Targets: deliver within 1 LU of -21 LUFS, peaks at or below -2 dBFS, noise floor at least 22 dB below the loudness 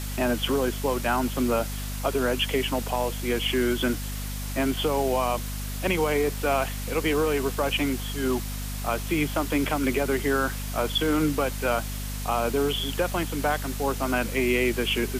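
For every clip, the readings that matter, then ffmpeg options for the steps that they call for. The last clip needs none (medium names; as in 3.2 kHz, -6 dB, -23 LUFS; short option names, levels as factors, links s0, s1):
hum 50 Hz; highest harmonic 250 Hz; hum level -30 dBFS; noise floor -32 dBFS; noise floor target -48 dBFS; loudness -26.0 LUFS; peak level -10.5 dBFS; loudness target -21.0 LUFS
-> -af "bandreject=f=50:t=h:w=4,bandreject=f=100:t=h:w=4,bandreject=f=150:t=h:w=4,bandreject=f=200:t=h:w=4,bandreject=f=250:t=h:w=4"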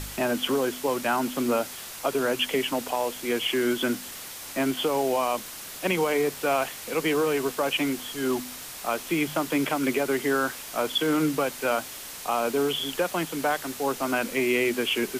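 hum not found; noise floor -40 dBFS; noise floor target -49 dBFS
-> -af "afftdn=nr=9:nf=-40"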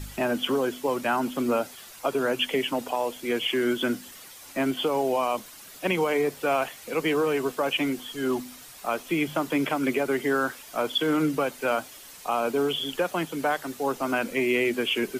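noise floor -46 dBFS; noise floor target -49 dBFS
-> -af "afftdn=nr=6:nf=-46"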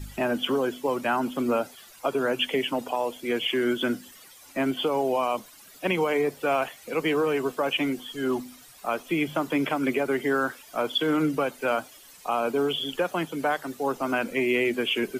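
noise floor -50 dBFS; loudness -27.0 LUFS; peak level -12.5 dBFS; loudness target -21.0 LUFS
-> -af "volume=2"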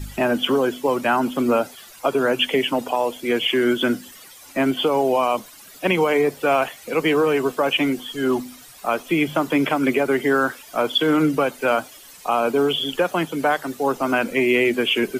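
loudness -21.0 LUFS; peak level -6.5 dBFS; noise floor -44 dBFS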